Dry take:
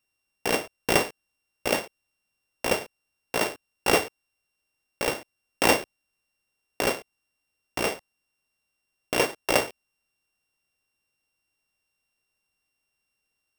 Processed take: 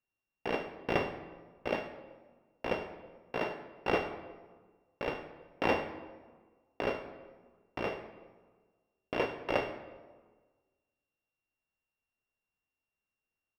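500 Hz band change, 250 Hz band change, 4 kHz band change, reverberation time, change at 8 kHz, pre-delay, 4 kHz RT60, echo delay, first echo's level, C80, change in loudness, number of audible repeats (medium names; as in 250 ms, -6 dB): -6.5 dB, -6.5 dB, -14.0 dB, 1.4 s, under -30 dB, 23 ms, 0.90 s, 76 ms, -15.0 dB, 11.0 dB, -9.5 dB, 1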